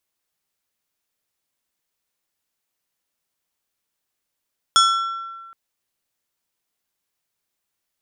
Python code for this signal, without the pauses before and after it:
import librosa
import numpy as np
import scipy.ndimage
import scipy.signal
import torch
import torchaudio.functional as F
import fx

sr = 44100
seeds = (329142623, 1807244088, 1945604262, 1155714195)

y = fx.strike_glass(sr, length_s=0.77, level_db=-11.5, body='plate', hz=1350.0, decay_s=1.56, tilt_db=3, modes=5)